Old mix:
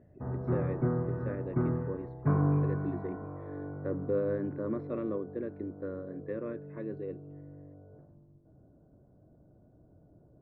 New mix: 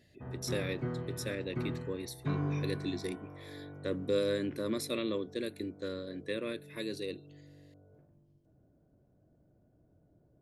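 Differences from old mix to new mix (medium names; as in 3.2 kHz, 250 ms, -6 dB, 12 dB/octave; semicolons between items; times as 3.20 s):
background -7.0 dB; master: remove low-pass 1.4 kHz 24 dB/octave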